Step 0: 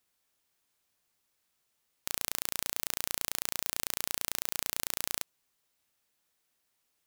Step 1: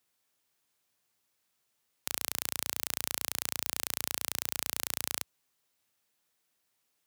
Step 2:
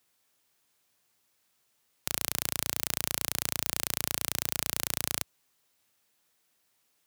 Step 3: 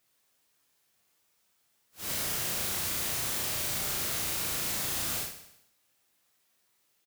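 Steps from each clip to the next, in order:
high-pass 69 Hz 24 dB/octave
in parallel at -4 dB: companded quantiser 4-bit; on the sum: saturation -6 dBFS, distortion -16 dB; trim +5 dB
phase randomisation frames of 200 ms; on a send: feedback delay 64 ms, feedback 59%, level -10 dB

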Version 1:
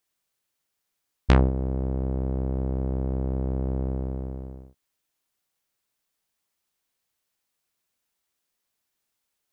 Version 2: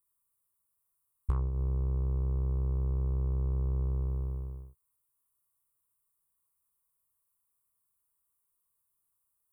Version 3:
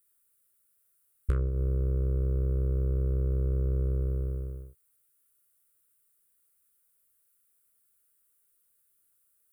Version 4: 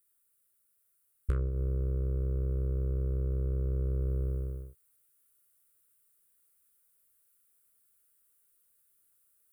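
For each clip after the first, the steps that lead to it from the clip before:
FFT filter 110 Hz 0 dB, 170 Hz -6 dB, 240 Hz -21 dB, 410 Hz -7 dB, 670 Hz -20 dB, 1.1 kHz 0 dB, 1.7 kHz -20 dB, 5.5 kHz -26 dB, 9 kHz +2 dB; compression 12:1, threshold -27 dBFS, peak gain reduction 13 dB; trim +1 dB
FFT filter 170 Hz 0 dB, 570 Hz +8 dB, 860 Hz -27 dB, 1.4 kHz +9 dB, 2.3 kHz +6 dB; trim +2.5 dB
gain riding 0.5 s; trim -2.5 dB

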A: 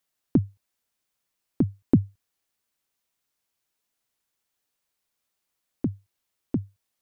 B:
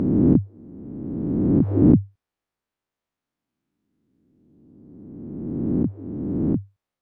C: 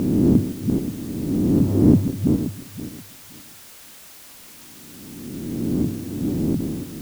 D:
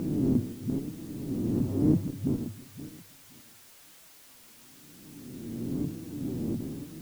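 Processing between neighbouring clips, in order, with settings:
reverse spectral sustain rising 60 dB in 2.10 s; low-pass 1.1 kHz 6 dB/octave
backward echo that repeats 263 ms, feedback 44%, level -5 dB; added noise white -44 dBFS
flange 1 Hz, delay 5.9 ms, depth 3 ms, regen +51%; trim -6 dB

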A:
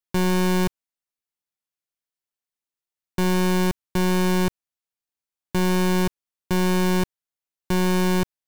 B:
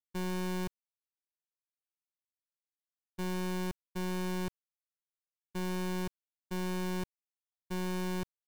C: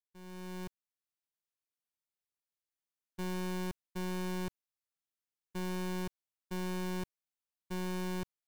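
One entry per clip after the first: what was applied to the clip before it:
expander -15 dBFS; trim -5 dB
fade-in on the opening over 1.08 s; trim -2 dB

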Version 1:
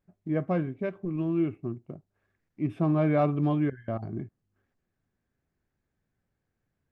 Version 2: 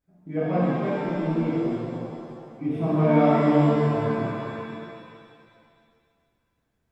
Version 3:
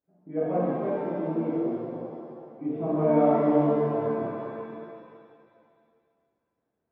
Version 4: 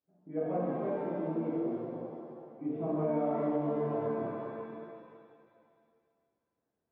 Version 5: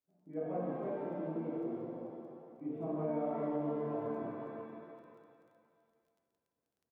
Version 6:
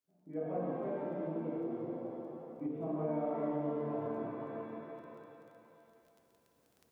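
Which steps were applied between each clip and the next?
spectral replace 3.52–4.43 s, 910–2600 Hz before; pitch-shifted reverb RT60 2.2 s, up +7 st, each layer -8 dB, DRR -10.5 dB; trim -6 dB
band-pass filter 500 Hz, Q 0.9
distance through air 56 m; compression, threshold -23 dBFS, peak gain reduction 7 dB; trim -4.5 dB
crackle 12 per s -57 dBFS; feedback delay 171 ms, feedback 55%, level -12.5 dB; trim -5 dB
recorder AGC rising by 6.6 dB/s; on a send at -9.5 dB: reverberation RT60 0.60 s, pre-delay 107 ms

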